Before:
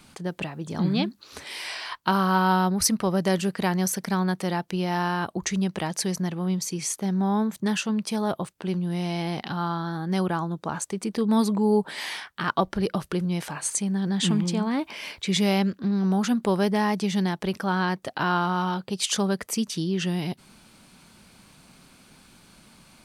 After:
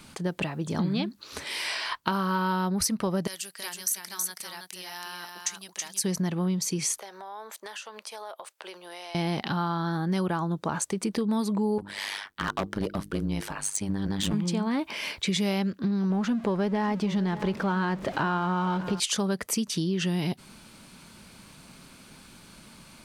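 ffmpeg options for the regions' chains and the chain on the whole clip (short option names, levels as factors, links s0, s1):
-filter_complex "[0:a]asettb=1/sr,asplit=3[s0][s1][s2];[s0]atrim=end=3.274[s3];[s1]atrim=start=3.27:end=6.04,asetpts=PTS-STARTPTS,afade=t=in:d=0.004:c=qsin,afade=t=out:st=2.766:d=0.004:c=qsin,aderivative,aecho=1:1:324:0.596,atrim=end_sample=122157[s4];[s2]atrim=start=6.036[s5];[s3][s4]acrossfade=d=0.004:c1=hsin:c2=qsin[s6];[s6][s5]acrossfade=d=0.004:c1=qsin:c2=hsin,asettb=1/sr,asplit=3[s7][s8][s9];[s7]atrim=end=6.984[s10];[s8]atrim=start=6.98:end=9.15,asetpts=PTS-STARTPTS,afade=t=in:d=0.004:c=qsin,afade=t=out:st=2.166:d=0.004:c=qsin,highpass=f=530:w=0.5412,highpass=f=530:w=1.3066,acompressor=threshold=0.01:ratio=5:attack=3.2:release=140:knee=1:detection=peak[s11];[s9]atrim=start=9.146[s12];[s10][s11]acrossfade=d=0.004:c1=hsin:c2=qsin[s13];[s13][s12]acrossfade=d=0.004:c1=qsin:c2=hsin,asettb=1/sr,asplit=3[s14][s15][s16];[s14]atrim=end=11.784[s17];[s15]atrim=start=11.78:end=14.34,asetpts=PTS-STARTPTS,afade=t=in:d=0.004:c=qsin,afade=t=out:st=2.556:d=0.004:c=qsin,bandreject=f=50:t=h:w=6,bandreject=f=100:t=h:w=6,bandreject=f=150:t=h:w=6,bandreject=f=200:t=h:w=6,bandreject=f=250:t=h:w=6,bandreject=f=300:t=h:w=6,bandreject=f=350:t=h:w=6,volume=11.9,asoftclip=hard,volume=0.0841,tremolo=f=100:d=0.919[s18];[s16]atrim=start=14.336[s19];[s17][s18]acrossfade=d=0.004:c1=hsin:c2=qsin[s20];[s20][s19]acrossfade=d=0.004:c1=qsin:c2=hsin,asettb=1/sr,asplit=3[s21][s22][s23];[s21]atrim=end=16.104[s24];[s22]atrim=start=16.1:end=19,asetpts=PTS-STARTPTS,afade=t=in:d=0.004:c=qsin,afade=t=out:st=2.896:d=0.004:c=qsin,aeval=exprs='val(0)+0.5*0.0188*sgn(val(0))':c=same,aemphasis=mode=reproduction:type=75fm,aecho=1:1:594:0.126,atrim=end_sample=127890[s25];[s23]atrim=start=18.996[s26];[s24][s25]acrossfade=d=0.004:c1=hsin:c2=qsin[s27];[s27][s26]acrossfade=d=0.004:c1=qsin:c2=hsin,bandreject=f=750:w=16,acompressor=threshold=0.0447:ratio=6,volume=1.41"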